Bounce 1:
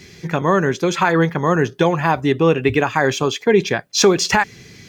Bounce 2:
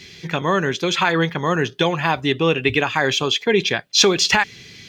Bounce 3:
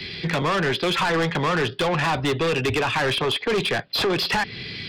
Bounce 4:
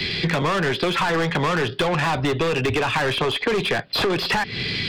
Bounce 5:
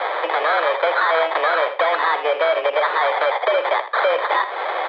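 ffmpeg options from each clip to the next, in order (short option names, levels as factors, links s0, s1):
-af "equalizer=f=3300:t=o:w=1.3:g=11.5,volume=0.631"
-filter_complex "[0:a]aresample=11025,asoftclip=type=hard:threshold=0.211,aresample=44100,acrossover=split=190|380|1700[s0][s1][s2][s3];[s0]acompressor=threshold=0.0251:ratio=4[s4];[s1]acompressor=threshold=0.0158:ratio=4[s5];[s2]acompressor=threshold=0.0708:ratio=4[s6];[s3]acompressor=threshold=0.0251:ratio=4[s7];[s4][s5][s6][s7]amix=inputs=4:normalize=0,asoftclip=type=tanh:threshold=0.0447,volume=2.66"
-filter_complex "[0:a]acrossover=split=2400[s0][s1];[s1]alimiter=level_in=1.19:limit=0.0631:level=0:latency=1:release=17,volume=0.841[s2];[s0][s2]amix=inputs=2:normalize=0,aeval=exprs='0.178*(cos(1*acos(clip(val(0)/0.178,-1,1)))-cos(1*PI/2))+0.0178*(cos(4*acos(clip(val(0)/0.178,-1,1)))-cos(4*PI/2))+0.0126*(cos(6*acos(clip(val(0)/0.178,-1,1)))-cos(6*PI/2))':c=same,acompressor=threshold=0.0398:ratio=6,volume=2.66"
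-af "acrusher=samples=17:mix=1:aa=0.000001,aecho=1:1:81|162:0.251|0.0452,highpass=f=310:t=q:w=0.5412,highpass=f=310:t=q:w=1.307,lowpass=f=3200:t=q:w=0.5176,lowpass=f=3200:t=q:w=0.7071,lowpass=f=3200:t=q:w=1.932,afreqshift=160,volume=1.68"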